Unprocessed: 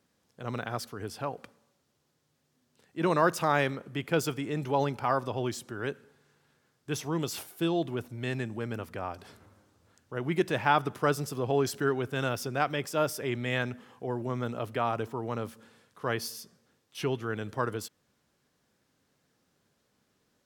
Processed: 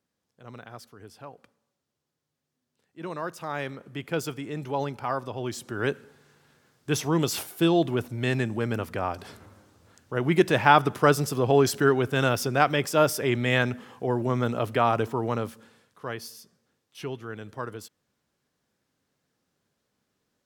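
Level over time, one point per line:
0:03.38 −9 dB
0:03.87 −1.5 dB
0:05.39 −1.5 dB
0:05.82 +7 dB
0:15.24 +7 dB
0:16.15 −4 dB

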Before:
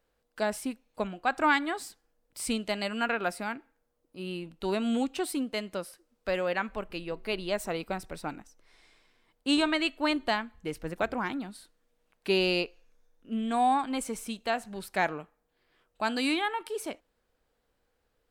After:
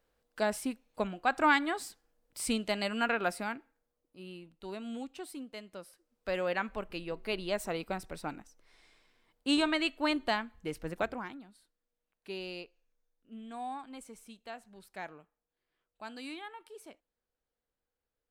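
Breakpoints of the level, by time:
0:03.37 −1 dB
0:04.50 −12 dB
0:05.70 −12 dB
0:06.43 −2.5 dB
0:11.01 −2.5 dB
0:11.44 −15 dB

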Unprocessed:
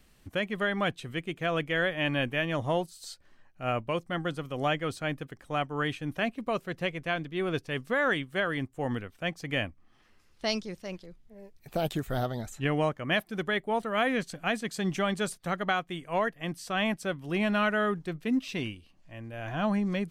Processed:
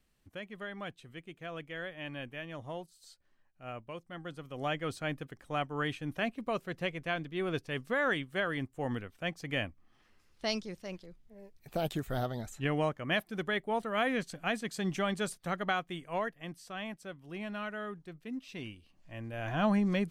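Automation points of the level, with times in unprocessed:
0:04.10 −13 dB
0:04.89 −3.5 dB
0:15.95 −3.5 dB
0:16.87 −12.5 dB
0:18.41 −12.5 dB
0:19.16 0 dB

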